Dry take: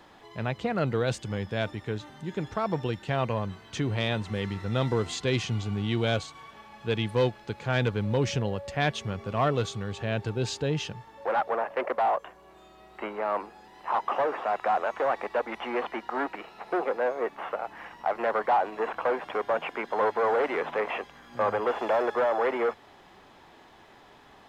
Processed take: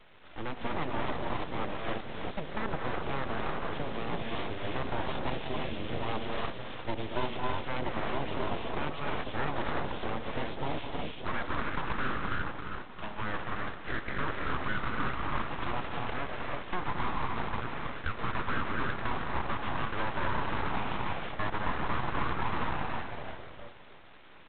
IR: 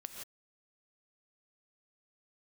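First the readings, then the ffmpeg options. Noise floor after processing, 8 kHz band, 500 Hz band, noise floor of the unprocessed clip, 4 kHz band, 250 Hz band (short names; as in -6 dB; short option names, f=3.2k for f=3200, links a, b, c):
-46 dBFS, under -35 dB, -10.0 dB, -54 dBFS, -4.0 dB, -4.5 dB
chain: -filter_complex "[0:a]asplit=5[a][b][c][d][e];[b]adelay=330,afreqshift=-92,volume=-9.5dB[f];[c]adelay=660,afreqshift=-184,volume=-18.9dB[g];[d]adelay=990,afreqshift=-276,volume=-28.2dB[h];[e]adelay=1320,afreqshift=-368,volume=-37.6dB[i];[a][f][g][h][i]amix=inputs=5:normalize=0[j];[1:a]atrim=start_sample=2205,asetrate=22050,aresample=44100[k];[j][k]afir=irnorm=-1:irlink=0,acrossover=split=96|360|840[l][m][n][o];[l]acompressor=threshold=-44dB:ratio=4[p];[m]acompressor=threshold=-36dB:ratio=4[q];[n]acompressor=threshold=-31dB:ratio=4[r];[o]acompressor=threshold=-41dB:ratio=4[s];[p][q][r][s]amix=inputs=4:normalize=0,aeval=exprs='abs(val(0))':c=same,aeval=exprs='0.141*(cos(1*acos(clip(val(0)/0.141,-1,1)))-cos(1*PI/2))+0.0251*(cos(2*acos(clip(val(0)/0.141,-1,1)))-cos(2*PI/2))':c=same" -ar 8000 -c:a adpcm_g726 -b:a 24k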